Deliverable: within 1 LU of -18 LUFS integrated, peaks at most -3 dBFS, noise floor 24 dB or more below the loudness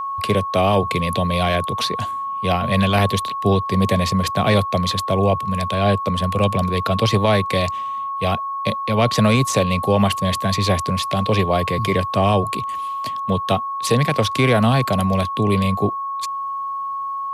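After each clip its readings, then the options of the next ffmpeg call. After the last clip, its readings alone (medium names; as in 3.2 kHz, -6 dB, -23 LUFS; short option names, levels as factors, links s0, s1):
steady tone 1.1 kHz; tone level -23 dBFS; loudness -19.5 LUFS; peak level -5.0 dBFS; loudness target -18.0 LUFS
-> -af "bandreject=f=1100:w=30"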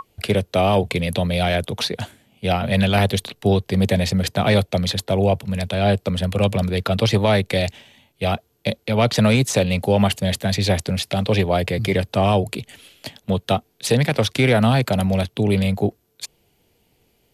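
steady tone not found; loudness -20.0 LUFS; peak level -6.0 dBFS; loudness target -18.0 LUFS
-> -af "volume=1.26"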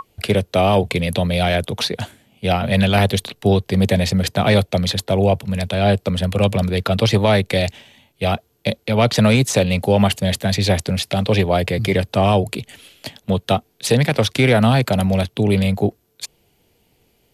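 loudness -18.0 LUFS; peak level -4.0 dBFS; noise floor -62 dBFS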